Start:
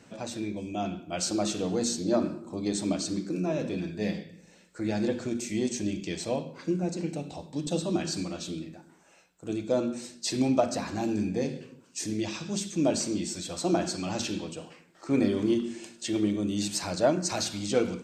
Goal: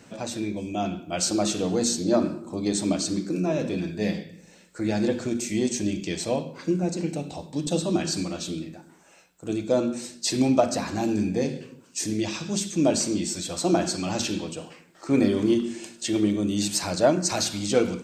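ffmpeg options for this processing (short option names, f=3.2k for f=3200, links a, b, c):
-af "highshelf=f=11k:g=6.5,volume=4dB"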